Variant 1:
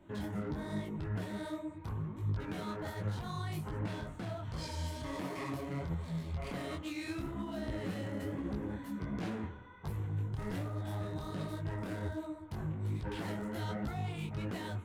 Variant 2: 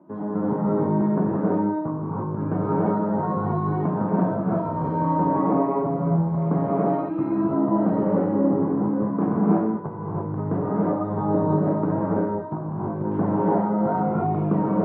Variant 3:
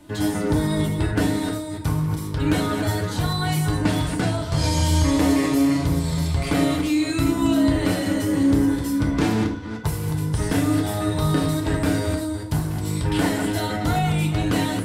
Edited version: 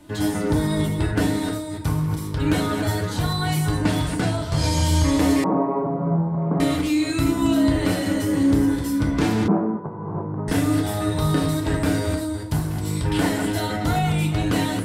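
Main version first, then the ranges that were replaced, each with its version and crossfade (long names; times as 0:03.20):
3
0:05.44–0:06.60: punch in from 2
0:09.48–0:10.48: punch in from 2
not used: 1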